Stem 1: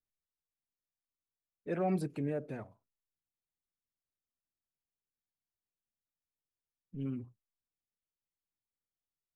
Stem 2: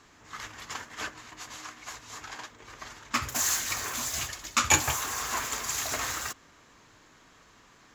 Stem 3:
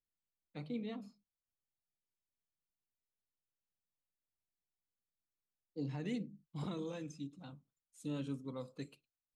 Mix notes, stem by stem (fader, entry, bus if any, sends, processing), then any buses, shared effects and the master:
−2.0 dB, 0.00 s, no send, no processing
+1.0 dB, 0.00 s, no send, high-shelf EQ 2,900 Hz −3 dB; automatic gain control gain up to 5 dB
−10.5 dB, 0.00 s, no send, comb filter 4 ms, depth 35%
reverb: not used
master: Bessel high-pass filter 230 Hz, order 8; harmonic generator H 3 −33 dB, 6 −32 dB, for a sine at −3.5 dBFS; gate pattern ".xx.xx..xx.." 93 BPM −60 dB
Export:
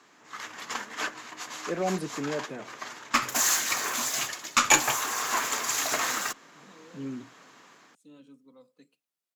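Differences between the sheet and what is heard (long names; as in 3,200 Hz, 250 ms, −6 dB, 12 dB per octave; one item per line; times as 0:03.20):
stem 1 −2.0 dB → +5.5 dB
master: missing gate pattern ".xx.xx..xx.." 93 BPM −60 dB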